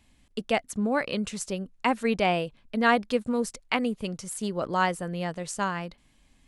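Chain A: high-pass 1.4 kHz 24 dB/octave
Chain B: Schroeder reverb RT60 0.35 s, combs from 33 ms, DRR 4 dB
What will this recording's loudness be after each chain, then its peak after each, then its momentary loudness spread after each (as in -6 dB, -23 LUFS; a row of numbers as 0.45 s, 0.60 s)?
-34.5 LUFS, -26.5 LUFS; -9.5 dBFS, -7.5 dBFS; 12 LU, 9 LU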